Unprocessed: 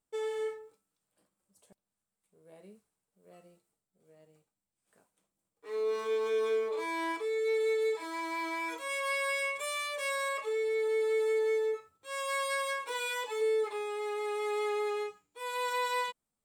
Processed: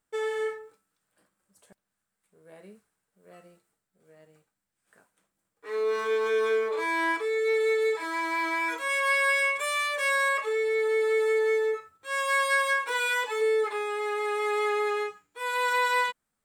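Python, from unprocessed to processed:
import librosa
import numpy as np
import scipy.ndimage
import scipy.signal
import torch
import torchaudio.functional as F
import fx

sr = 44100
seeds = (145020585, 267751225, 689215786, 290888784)

y = fx.peak_eq(x, sr, hz=1600.0, db=9.0, octaves=0.85)
y = y * 10.0 ** (4.0 / 20.0)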